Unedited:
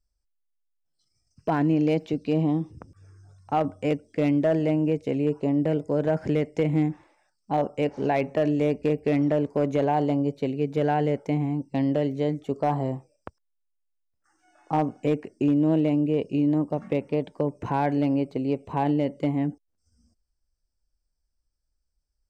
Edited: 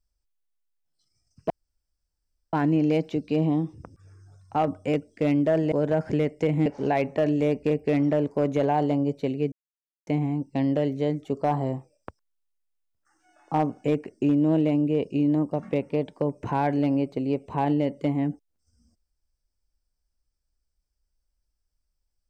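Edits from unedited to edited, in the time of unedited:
1.5 insert room tone 1.03 s
4.69–5.88 cut
6.82–7.85 cut
10.71–11.26 mute

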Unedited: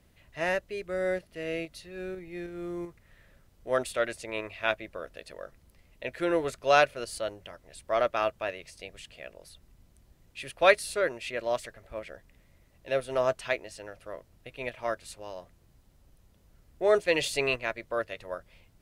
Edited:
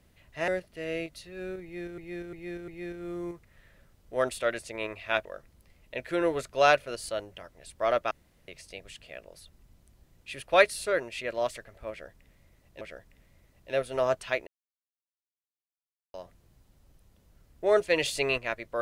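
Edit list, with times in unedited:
0.48–1.07 cut
2.22–2.57 loop, 4 plays
4.79–5.34 cut
8.2–8.57 room tone
11.99–12.9 loop, 2 plays
13.65–15.32 mute

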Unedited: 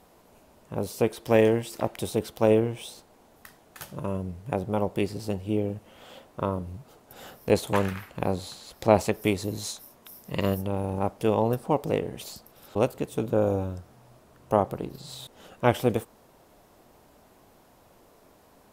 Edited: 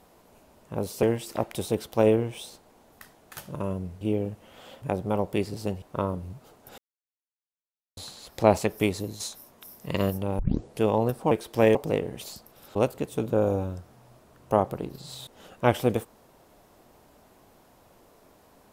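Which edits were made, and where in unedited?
1.03–1.47 move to 11.75
5.45–6.26 move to 4.45
7.22–8.41 mute
9.39–9.64 fade out, to -7.5 dB
10.83 tape start 0.41 s

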